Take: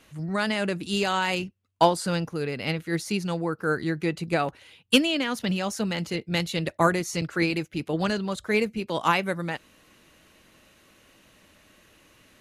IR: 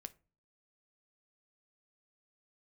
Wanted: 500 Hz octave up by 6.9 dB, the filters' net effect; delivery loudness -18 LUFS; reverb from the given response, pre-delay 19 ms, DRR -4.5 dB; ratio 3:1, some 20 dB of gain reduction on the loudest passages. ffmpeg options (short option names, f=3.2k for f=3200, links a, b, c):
-filter_complex "[0:a]equalizer=f=500:t=o:g=8.5,acompressor=threshold=-38dB:ratio=3,asplit=2[a][b];[1:a]atrim=start_sample=2205,adelay=19[c];[b][c]afir=irnorm=-1:irlink=0,volume=10dB[d];[a][d]amix=inputs=2:normalize=0,volume=14dB"